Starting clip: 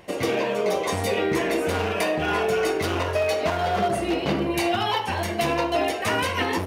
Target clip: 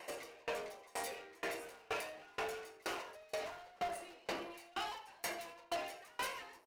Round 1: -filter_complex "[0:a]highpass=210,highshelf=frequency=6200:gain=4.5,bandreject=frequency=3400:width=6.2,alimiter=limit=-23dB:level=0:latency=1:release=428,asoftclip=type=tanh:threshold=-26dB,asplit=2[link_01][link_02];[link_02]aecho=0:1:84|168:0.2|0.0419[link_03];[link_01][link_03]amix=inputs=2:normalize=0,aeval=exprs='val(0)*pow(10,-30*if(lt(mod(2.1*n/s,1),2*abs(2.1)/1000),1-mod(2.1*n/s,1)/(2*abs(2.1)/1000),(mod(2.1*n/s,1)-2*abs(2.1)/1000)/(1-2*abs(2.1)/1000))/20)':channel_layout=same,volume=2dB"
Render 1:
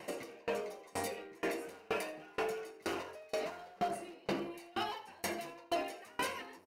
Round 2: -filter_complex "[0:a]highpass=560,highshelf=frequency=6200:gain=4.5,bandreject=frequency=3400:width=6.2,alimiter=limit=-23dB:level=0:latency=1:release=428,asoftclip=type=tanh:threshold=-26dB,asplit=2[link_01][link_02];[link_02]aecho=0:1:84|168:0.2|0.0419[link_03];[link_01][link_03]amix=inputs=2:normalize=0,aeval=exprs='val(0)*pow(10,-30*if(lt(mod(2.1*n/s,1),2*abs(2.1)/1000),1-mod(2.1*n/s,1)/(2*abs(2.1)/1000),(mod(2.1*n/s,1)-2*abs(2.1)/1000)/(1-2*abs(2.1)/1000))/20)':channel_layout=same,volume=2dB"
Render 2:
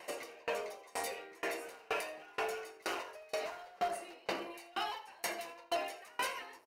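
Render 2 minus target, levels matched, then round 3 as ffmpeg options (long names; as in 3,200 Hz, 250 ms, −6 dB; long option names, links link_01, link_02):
soft clipping: distortion −10 dB
-filter_complex "[0:a]highpass=560,highshelf=frequency=6200:gain=4.5,bandreject=frequency=3400:width=6.2,alimiter=limit=-23dB:level=0:latency=1:release=428,asoftclip=type=tanh:threshold=-34.5dB,asplit=2[link_01][link_02];[link_02]aecho=0:1:84|168:0.2|0.0419[link_03];[link_01][link_03]amix=inputs=2:normalize=0,aeval=exprs='val(0)*pow(10,-30*if(lt(mod(2.1*n/s,1),2*abs(2.1)/1000),1-mod(2.1*n/s,1)/(2*abs(2.1)/1000),(mod(2.1*n/s,1)-2*abs(2.1)/1000)/(1-2*abs(2.1)/1000))/20)':channel_layout=same,volume=2dB"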